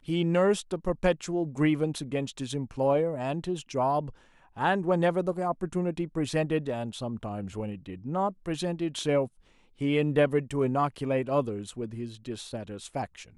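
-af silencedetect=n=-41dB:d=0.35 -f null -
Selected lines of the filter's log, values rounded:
silence_start: 4.10
silence_end: 4.57 | silence_duration: 0.46
silence_start: 9.27
silence_end: 9.81 | silence_duration: 0.54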